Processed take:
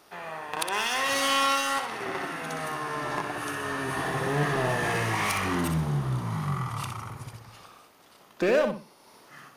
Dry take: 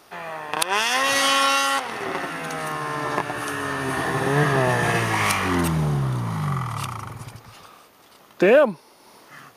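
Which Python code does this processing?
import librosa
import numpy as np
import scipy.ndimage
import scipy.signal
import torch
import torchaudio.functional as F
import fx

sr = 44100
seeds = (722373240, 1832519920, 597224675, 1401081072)

p1 = 10.0 ** (-20.0 / 20.0) * (np.abs((x / 10.0 ** (-20.0 / 20.0) + 3.0) % 4.0 - 2.0) - 1.0)
p2 = x + (p1 * librosa.db_to_amplitude(-7.0))
p3 = fx.echo_feedback(p2, sr, ms=62, feedback_pct=25, wet_db=-7.0)
y = p3 * librosa.db_to_amplitude(-8.5)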